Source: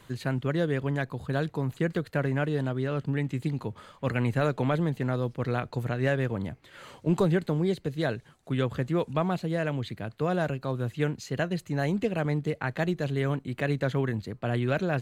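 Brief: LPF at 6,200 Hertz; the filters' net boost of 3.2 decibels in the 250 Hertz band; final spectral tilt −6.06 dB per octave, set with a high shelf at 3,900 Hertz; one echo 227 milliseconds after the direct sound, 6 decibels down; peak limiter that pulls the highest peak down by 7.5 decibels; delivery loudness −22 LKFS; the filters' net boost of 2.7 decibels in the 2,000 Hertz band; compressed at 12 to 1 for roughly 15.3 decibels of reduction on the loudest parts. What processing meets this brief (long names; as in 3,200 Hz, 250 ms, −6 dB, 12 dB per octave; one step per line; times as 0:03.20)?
low-pass filter 6,200 Hz
parametric band 250 Hz +4.5 dB
parametric band 2,000 Hz +5 dB
high-shelf EQ 3,900 Hz −7 dB
downward compressor 12 to 1, threshold −33 dBFS
brickwall limiter −28.5 dBFS
single-tap delay 227 ms −6 dB
level +17 dB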